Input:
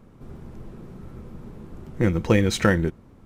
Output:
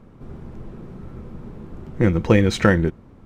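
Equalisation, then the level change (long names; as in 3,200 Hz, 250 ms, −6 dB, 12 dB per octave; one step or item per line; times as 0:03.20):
low-pass filter 3,800 Hz 6 dB per octave
+3.5 dB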